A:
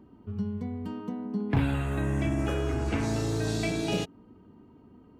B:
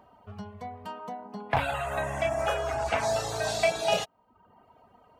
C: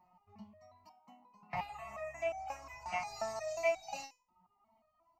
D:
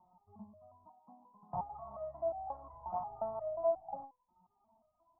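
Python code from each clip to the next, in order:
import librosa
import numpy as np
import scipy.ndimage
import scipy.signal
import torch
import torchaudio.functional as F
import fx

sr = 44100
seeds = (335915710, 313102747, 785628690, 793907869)

y1 = fx.dereverb_blind(x, sr, rt60_s=0.72)
y1 = fx.low_shelf_res(y1, sr, hz=460.0, db=-12.5, q=3.0)
y1 = F.gain(torch.from_numpy(y1), 6.0).numpy()
y2 = fx.fixed_phaser(y1, sr, hz=2300.0, stages=8)
y2 = fx.resonator_held(y2, sr, hz=5.6, low_hz=180.0, high_hz=760.0)
y2 = F.gain(torch.from_numpy(y2), 4.5).numpy()
y3 = scipy.signal.sosfilt(scipy.signal.butter(8, 1100.0, 'lowpass', fs=sr, output='sos'), y2)
y3 = F.gain(torch.from_numpy(y3), 1.0).numpy()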